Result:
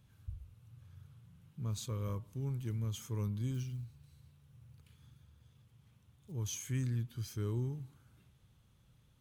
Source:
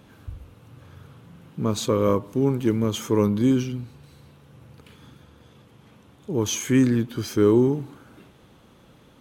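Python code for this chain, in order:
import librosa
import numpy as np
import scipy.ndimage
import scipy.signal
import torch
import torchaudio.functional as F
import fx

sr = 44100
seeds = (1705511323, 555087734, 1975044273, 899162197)

y = fx.quant_float(x, sr, bits=4, at=(3.54, 6.32))
y = fx.curve_eq(y, sr, hz=(120.0, 270.0, 510.0, 9500.0), db=(0, -18, -18, -4))
y = F.gain(torch.from_numpy(y), -7.5).numpy()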